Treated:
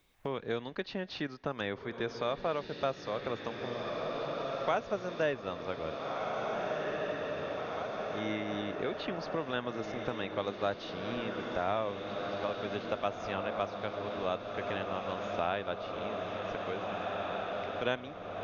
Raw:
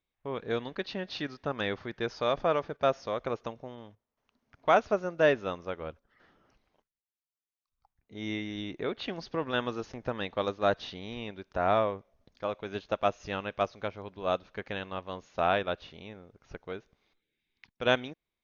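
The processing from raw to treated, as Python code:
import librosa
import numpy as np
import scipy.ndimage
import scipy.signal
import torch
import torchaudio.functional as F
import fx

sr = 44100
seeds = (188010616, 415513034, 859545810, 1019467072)

y = fx.echo_diffused(x, sr, ms=1773, feedback_pct=66, wet_db=-7)
y = fx.band_squash(y, sr, depth_pct=70)
y = y * librosa.db_to_amplitude(-4.0)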